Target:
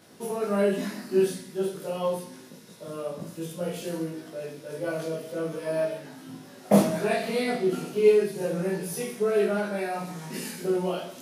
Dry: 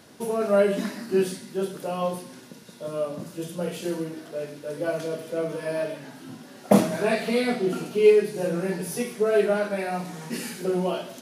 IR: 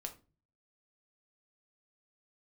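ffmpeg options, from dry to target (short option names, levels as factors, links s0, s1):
-filter_complex "[0:a]asplit=2[s0][s1];[1:a]atrim=start_sample=2205,highshelf=f=9900:g=6.5,adelay=19[s2];[s1][s2]afir=irnorm=-1:irlink=0,volume=1.58[s3];[s0][s3]amix=inputs=2:normalize=0,volume=0.501"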